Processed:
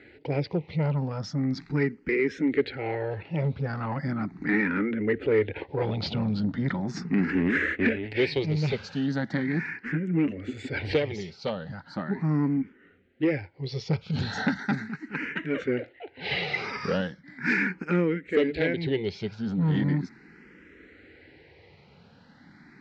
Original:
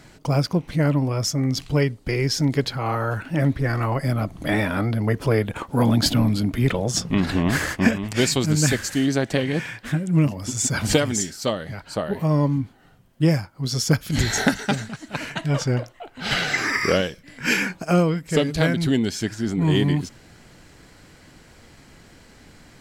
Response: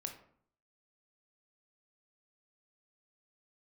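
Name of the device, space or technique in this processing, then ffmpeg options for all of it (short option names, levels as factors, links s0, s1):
barber-pole phaser into a guitar amplifier: -filter_complex "[0:a]asplit=2[s0][s1];[s1]afreqshift=0.38[s2];[s0][s2]amix=inputs=2:normalize=1,asoftclip=type=tanh:threshold=0.141,highpass=99,equalizer=f=120:t=q:w=4:g=-8,equalizer=f=420:t=q:w=4:g=4,equalizer=f=650:t=q:w=4:g=-9,equalizer=f=1100:t=q:w=4:g=-9,equalizer=f=2000:t=q:w=4:g=4,equalizer=f=3200:t=q:w=4:g=-7,lowpass=f=3600:w=0.5412,lowpass=f=3600:w=1.3066,volume=1.12"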